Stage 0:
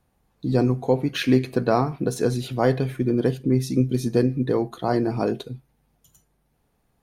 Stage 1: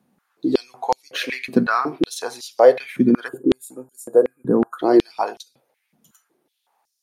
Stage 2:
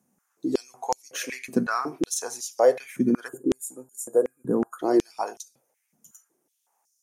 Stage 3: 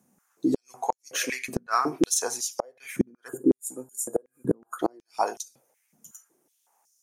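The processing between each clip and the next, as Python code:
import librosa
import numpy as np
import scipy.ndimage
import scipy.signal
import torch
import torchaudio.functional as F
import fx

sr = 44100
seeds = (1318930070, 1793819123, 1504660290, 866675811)

y1 = fx.spec_box(x, sr, start_s=3.28, length_s=1.51, low_hz=1700.0, high_hz=6800.0, gain_db=-27)
y1 = fx.filter_held_highpass(y1, sr, hz=5.4, low_hz=210.0, high_hz=5500.0)
y1 = y1 * librosa.db_to_amplitude(1.0)
y2 = fx.high_shelf_res(y1, sr, hz=5100.0, db=8.0, q=3.0)
y2 = y2 * librosa.db_to_amplitude(-6.5)
y3 = fx.gate_flip(y2, sr, shuts_db=-14.0, range_db=-36)
y3 = y3 * librosa.db_to_amplitude(4.0)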